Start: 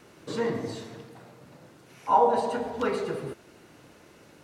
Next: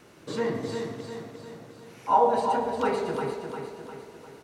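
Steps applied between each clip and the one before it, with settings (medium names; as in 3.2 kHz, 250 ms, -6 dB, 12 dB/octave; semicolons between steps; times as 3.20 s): feedback delay 352 ms, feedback 51%, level -6.5 dB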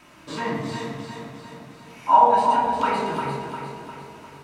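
fifteen-band graphic EQ 100 Hz -4 dB, 400 Hz -9 dB, 1 kHz +5 dB, 2.5 kHz +5 dB; simulated room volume 650 m³, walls furnished, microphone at 2.8 m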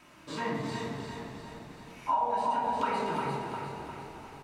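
compression, threshold -20 dBFS, peak gain reduction 10.5 dB; on a send: frequency-shifting echo 264 ms, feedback 62%, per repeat -35 Hz, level -12.5 dB; on the sum: trim -5.5 dB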